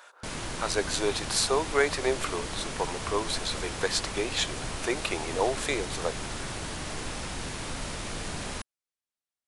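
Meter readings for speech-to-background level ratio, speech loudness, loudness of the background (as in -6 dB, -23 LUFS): 5.5 dB, -30.0 LUFS, -35.5 LUFS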